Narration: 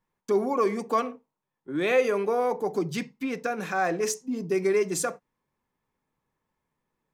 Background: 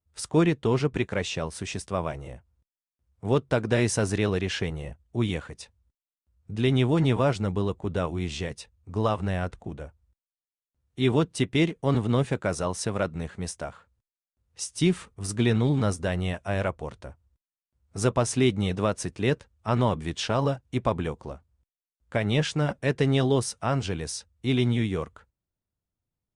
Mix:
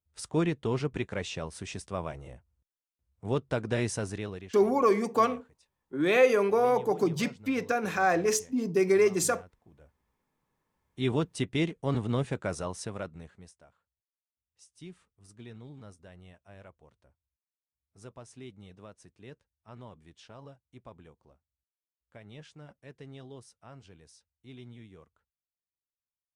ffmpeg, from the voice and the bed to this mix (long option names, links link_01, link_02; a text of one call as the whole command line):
ffmpeg -i stem1.wav -i stem2.wav -filter_complex "[0:a]adelay=4250,volume=1dB[link_01];[1:a]volume=11.5dB,afade=type=out:start_time=3.82:duration=0.75:silence=0.141254,afade=type=in:start_time=9.69:duration=1.39:silence=0.133352,afade=type=out:start_time=12.49:duration=1.07:silence=0.11885[link_02];[link_01][link_02]amix=inputs=2:normalize=0" out.wav